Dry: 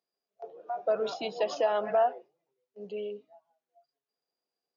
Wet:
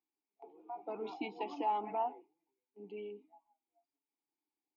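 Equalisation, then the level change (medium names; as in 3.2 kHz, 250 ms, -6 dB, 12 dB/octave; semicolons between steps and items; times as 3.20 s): vowel filter u; +8.5 dB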